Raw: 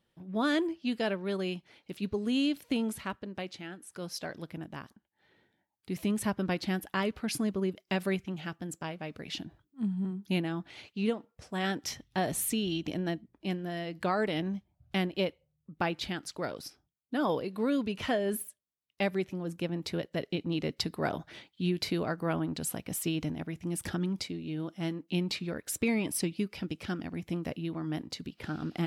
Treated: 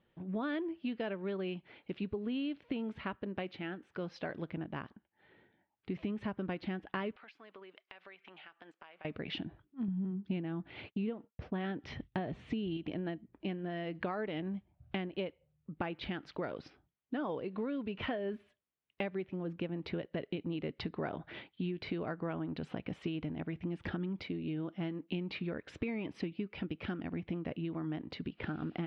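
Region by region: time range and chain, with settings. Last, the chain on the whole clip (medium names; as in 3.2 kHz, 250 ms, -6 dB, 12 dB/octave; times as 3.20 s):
7.16–9.05 s: high-pass 880 Hz + compression 16:1, threshold -51 dBFS
9.88–12.77 s: low-pass 6.9 kHz + bass shelf 350 Hz +7.5 dB + expander -53 dBFS
whole clip: low-pass 3.1 kHz 24 dB/octave; peaking EQ 390 Hz +2 dB; compression 6:1, threshold -37 dBFS; trim +2.5 dB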